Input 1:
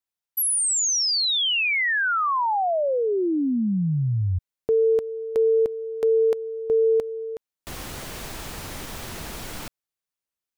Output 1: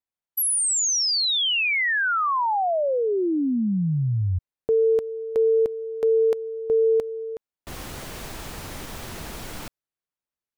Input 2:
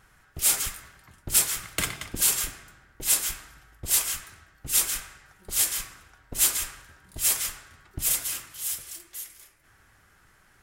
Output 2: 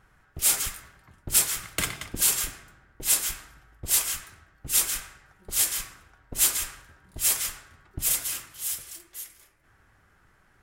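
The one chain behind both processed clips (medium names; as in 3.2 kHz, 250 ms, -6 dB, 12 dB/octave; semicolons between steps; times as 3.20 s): tape noise reduction on one side only decoder only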